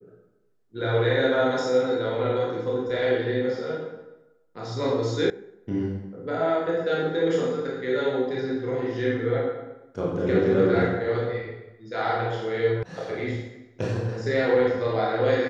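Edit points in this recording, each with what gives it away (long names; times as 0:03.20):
0:05.30: cut off before it has died away
0:12.83: cut off before it has died away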